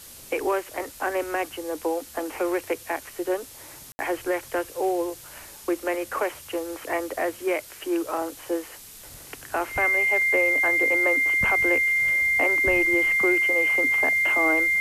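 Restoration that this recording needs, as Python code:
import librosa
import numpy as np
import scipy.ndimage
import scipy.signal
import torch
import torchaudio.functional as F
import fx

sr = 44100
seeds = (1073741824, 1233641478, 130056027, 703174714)

y = fx.notch(x, sr, hz=2100.0, q=30.0)
y = fx.fix_ambience(y, sr, seeds[0], print_start_s=8.77, print_end_s=9.27, start_s=3.92, end_s=3.99)
y = fx.noise_reduce(y, sr, print_start_s=8.77, print_end_s=9.27, reduce_db=26.0)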